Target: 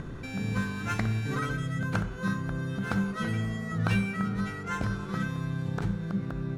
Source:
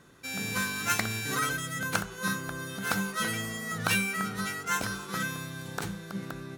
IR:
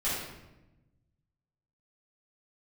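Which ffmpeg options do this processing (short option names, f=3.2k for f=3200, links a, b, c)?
-filter_complex "[0:a]acompressor=mode=upward:threshold=-31dB:ratio=2.5,aemphasis=mode=reproduction:type=riaa,asplit=2[a][b];[1:a]atrim=start_sample=2205,adelay=48[c];[b][c]afir=irnorm=-1:irlink=0,volume=-21.5dB[d];[a][d]amix=inputs=2:normalize=0,volume=-3dB"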